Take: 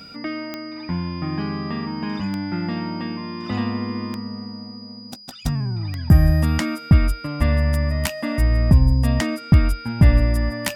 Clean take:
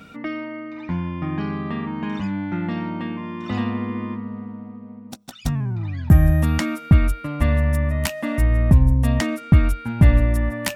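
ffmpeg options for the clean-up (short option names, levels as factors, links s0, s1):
-af "adeclick=t=4,bandreject=f=4900:w=30"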